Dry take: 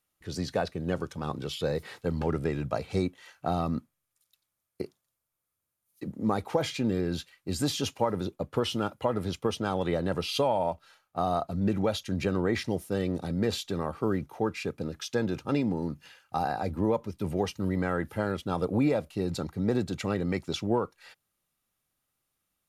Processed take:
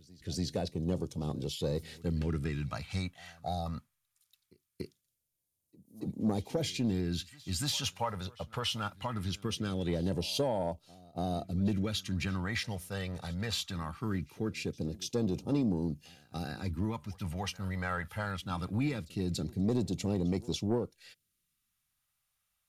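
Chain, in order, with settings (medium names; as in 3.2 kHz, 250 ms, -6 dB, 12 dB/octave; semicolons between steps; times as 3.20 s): time-frequency box 3.42–3.66 s, 850–3400 Hz -21 dB; phase shifter stages 2, 0.21 Hz, lowest notch 310–1500 Hz; saturation -21.5 dBFS, distortion -19 dB; reverse echo 286 ms -22.5 dB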